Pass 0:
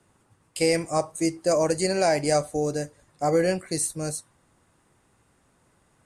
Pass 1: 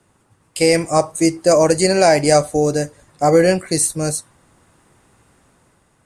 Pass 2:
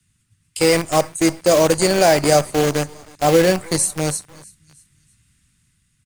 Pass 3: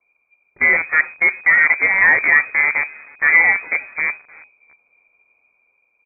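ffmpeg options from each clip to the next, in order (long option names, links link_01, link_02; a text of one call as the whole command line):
ffmpeg -i in.wav -af "dynaudnorm=framelen=110:gausssize=11:maxgain=5dB,volume=4.5dB" out.wav
ffmpeg -i in.wav -filter_complex "[0:a]aecho=1:1:319|638|957:0.0891|0.0401|0.018,acrossover=split=200|1900[link_01][link_02][link_03];[link_02]acrusher=bits=4:dc=4:mix=0:aa=0.000001[link_04];[link_01][link_04][link_03]amix=inputs=3:normalize=0,volume=-1.5dB" out.wav
ffmpeg -i in.wav -af "lowpass=frequency=2100:width_type=q:width=0.5098,lowpass=frequency=2100:width_type=q:width=0.6013,lowpass=frequency=2100:width_type=q:width=0.9,lowpass=frequency=2100:width_type=q:width=2.563,afreqshift=-2500,volume=1dB" out.wav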